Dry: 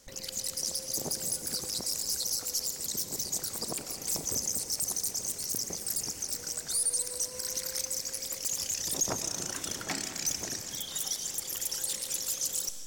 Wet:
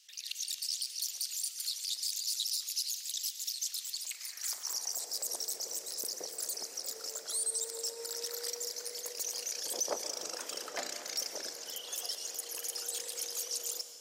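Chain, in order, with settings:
wrong playback speed 48 kHz file played as 44.1 kHz
high-pass filter sweep 2,900 Hz → 500 Hz, 0:04.01–0:05.22
level −5 dB

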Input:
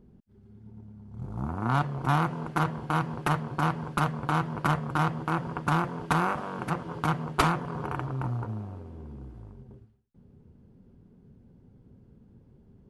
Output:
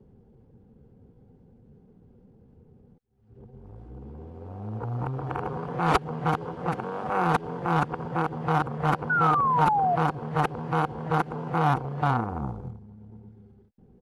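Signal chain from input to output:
played backwards from end to start
high-shelf EQ 6,000 Hz −8 dB
hollow resonant body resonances 480/770 Hz, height 9 dB, ringing for 35 ms
sound drawn into the spectrogram fall, 0:08.38–0:09.17, 680–1,500 Hz −23 dBFS
tempo change 0.92×

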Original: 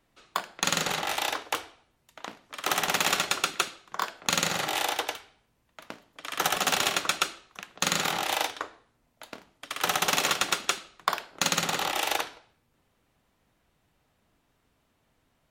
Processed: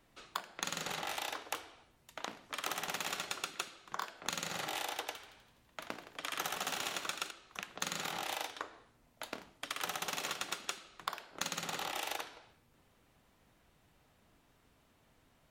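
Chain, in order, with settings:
downward compressor 5 to 1, threshold −39 dBFS, peak gain reduction 17.5 dB
0:05.12–0:07.31: echo with shifted repeats 83 ms, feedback 61%, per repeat +63 Hz, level −10 dB
level +2 dB

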